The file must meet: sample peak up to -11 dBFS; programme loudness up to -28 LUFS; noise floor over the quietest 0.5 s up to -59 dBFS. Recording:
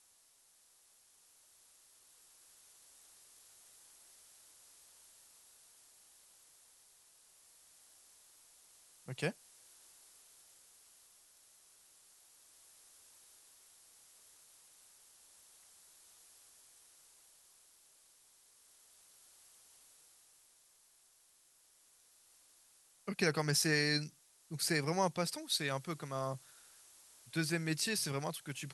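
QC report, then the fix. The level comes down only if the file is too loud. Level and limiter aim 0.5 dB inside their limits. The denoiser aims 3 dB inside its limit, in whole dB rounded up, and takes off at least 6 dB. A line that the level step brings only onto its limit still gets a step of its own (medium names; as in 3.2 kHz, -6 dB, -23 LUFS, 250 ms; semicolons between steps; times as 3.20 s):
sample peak -17.5 dBFS: pass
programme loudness -35.5 LUFS: pass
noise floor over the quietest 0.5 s -68 dBFS: pass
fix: none needed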